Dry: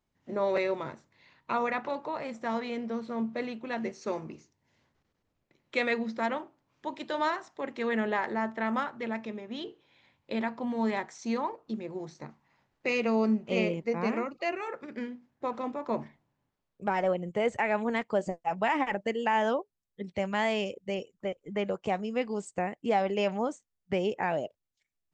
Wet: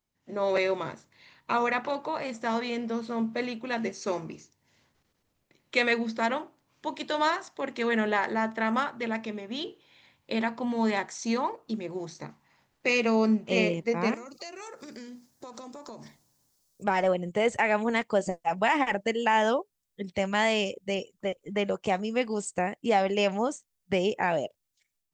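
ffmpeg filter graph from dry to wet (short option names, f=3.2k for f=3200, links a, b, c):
-filter_complex "[0:a]asettb=1/sr,asplit=3[a][b][c];[a]atrim=end=14.144[d];[b]atrim=start=14.14:end=16.84,asetpts=PTS-STARTPTS,afade=t=in:d=0.004:c=qsin,afade=t=out:st=2.696:d=0.004:c=qsin,highshelf=f=3.8k:t=q:w=1.5:g=12.5,acompressor=threshold=-42dB:ratio=8:attack=3.2:release=140:knee=1:detection=peak[e];[c]atrim=start=16.836[f];[d][e]acrossfade=d=0.004:c1=hsin:c2=qsin[g];[g][f]acrossfade=d=0.004:c1=qsin:c2=hsin,highshelf=f=3.5k:g=9,dynaudnorm=f=260:g=3:m=8dB,volume=-5.5dB"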